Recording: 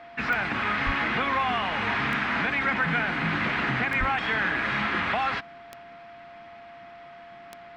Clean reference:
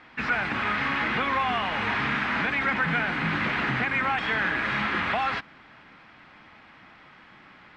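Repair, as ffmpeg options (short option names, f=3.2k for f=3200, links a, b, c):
-filter_complex "[0:a]adeclick=t=4,bandreject=f=690:w=30,asplit=3[a][b][c];[a]afade=t=out:st=0.85:d=0.02[d];[b]highpass=f=140:w=0.5412,highpass=f=140:w=1.3066,afade=t=in:st=0.85:d=0.02,afade=t=out:st=0.97:d=0.02[e];[c]afade=t=in:st=0.97:d=0.02[f];[d][e][f]amix=inputs=3:normalize=0,asplit=3[g][h][i];[g]afade=t=out:st=3.99:d=0.02[j];[h]highpass=f=140:w=0.5412,highpass=f=140:w=1.3066,afade=t=in:st=3.99:d=0.02,afade=t=out:st=4.11:d=0.02[k];[i]afade=t=in:st=4.11:d=0.02[l];[j][k][l]amix=inputs=3:normalize=0"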